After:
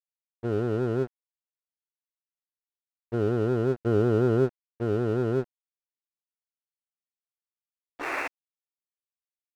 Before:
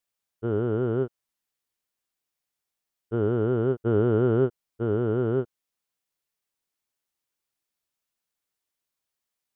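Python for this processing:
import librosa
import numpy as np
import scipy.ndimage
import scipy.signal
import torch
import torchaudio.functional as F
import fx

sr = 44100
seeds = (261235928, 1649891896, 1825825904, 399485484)

y = fx.spec_paint(x, sr, seeds[0], shape='noise', start_s=7.98, length_s=0.3, low_hz=270.0, high_hz=2800.0, level_db=-28.0)
y = fx.env_lowpass(y, sr, base_hz=330.0, full_db=-19.5)
y = np.sign(y) * np.maximum(np.abs(y) - 10.0 ** (-40.0 / 20.0), 0.0)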